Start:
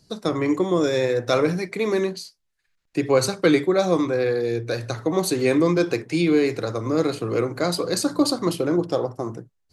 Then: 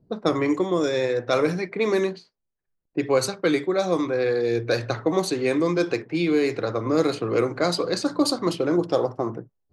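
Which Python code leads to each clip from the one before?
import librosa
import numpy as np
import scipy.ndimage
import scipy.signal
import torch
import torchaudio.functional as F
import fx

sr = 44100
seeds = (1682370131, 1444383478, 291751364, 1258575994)

y = fx.low_shelf(x, sr, hz=170.0, db=-6.5)
y = fx.rider(y, sr, range_db=10, speed_s=0.5)
y = fx.env_lowpass(y, sr, base_hz=480.0, full_db=-16.5)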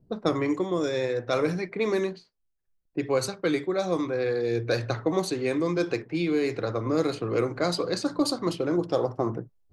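y = fx.low_shelf(x, sr, hz=76.0, db=11.0)
y = fx.rider(y, sr, range_db=4, speed_s=0.5)
y = F.gain(torch.from_numpy(y), -4.0).numpy()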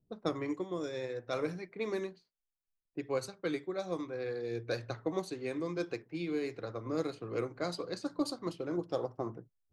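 y = fx.upward_expand(x, sr, threshold_db=-35.0, expansion=1.5)
y = F.gain(torch.from_numpy(y), -7.5).numpy()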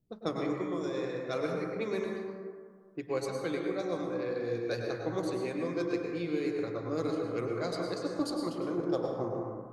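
y = fx.rev_plate(x, sr, seeds[0], rt60_s=1.9, hf_ratio=0.3, predelay_ms=90, drr_db=0.5)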